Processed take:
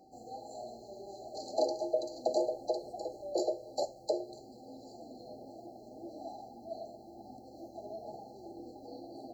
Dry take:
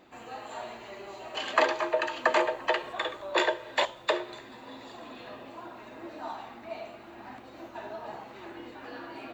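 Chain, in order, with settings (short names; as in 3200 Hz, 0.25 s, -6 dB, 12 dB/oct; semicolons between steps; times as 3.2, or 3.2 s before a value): brick-wall FIR band-stop 850–4000 Hz; whine 770 Hz -57 dBFS; gain -3 dB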